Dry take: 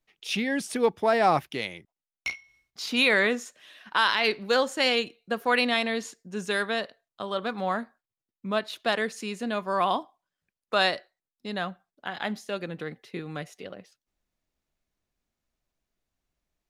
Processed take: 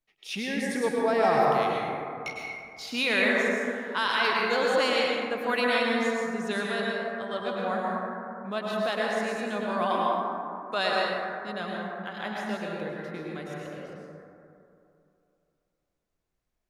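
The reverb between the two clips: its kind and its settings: plate-style reverb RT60 2.7 s, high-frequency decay 0.3×, pre-delay 90 ms, DRR -4 dB; gain -5.5 dB

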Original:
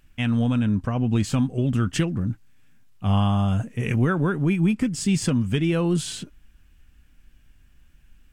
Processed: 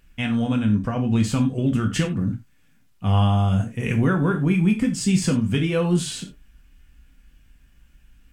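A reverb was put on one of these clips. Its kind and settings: non-linear reverb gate 0.12 s falling, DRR 3 dB

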